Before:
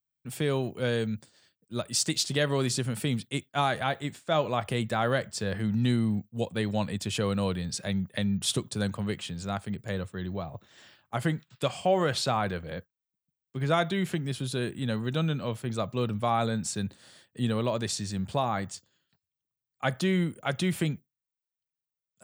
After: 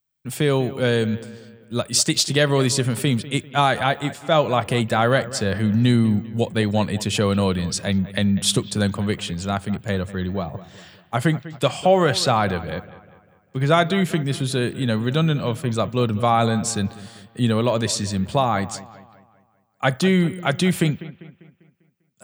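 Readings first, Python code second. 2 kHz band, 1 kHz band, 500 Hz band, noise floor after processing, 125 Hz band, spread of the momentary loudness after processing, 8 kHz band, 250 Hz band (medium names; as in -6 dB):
+8.5 dB, +8.5 dB, +8.5 dB, -62 dBFS, +8.5 dB, 9 LU, +8.5 dB, +8.5 dB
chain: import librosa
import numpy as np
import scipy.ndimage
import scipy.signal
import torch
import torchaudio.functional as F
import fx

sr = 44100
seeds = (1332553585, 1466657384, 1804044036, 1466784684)

y = fx.echo_bbd(x, sr, ms=198, stages=4096, feedback_pct=46, wet_db=-16.5)
y = F.gain(torch.from_numpy(y), 8.5).numpy()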